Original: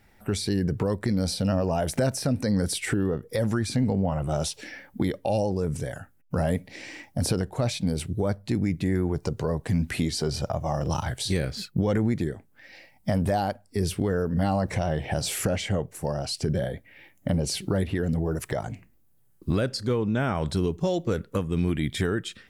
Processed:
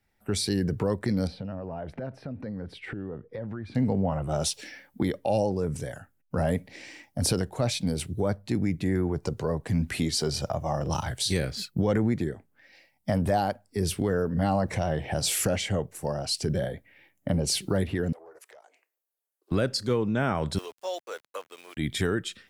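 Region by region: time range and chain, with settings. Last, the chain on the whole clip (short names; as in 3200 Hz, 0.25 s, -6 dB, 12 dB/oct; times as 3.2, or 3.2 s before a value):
1.27–3.75 air absorption 390 m + compressor 10:1, threshold -27 dBFS
18.12–19.51 steep high-pass 430 Hz + compressor 3:1, threshold -47 dBFS + Doppler distortion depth 0.29 ms
20.58–21.77 HPF 560 Hz 24 dB/oct + notch 4700 Hz, Q 19 + sample gate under -45 dBFS
whole clip: low shelf 170 Hz -3 dB; three-band expander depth 40%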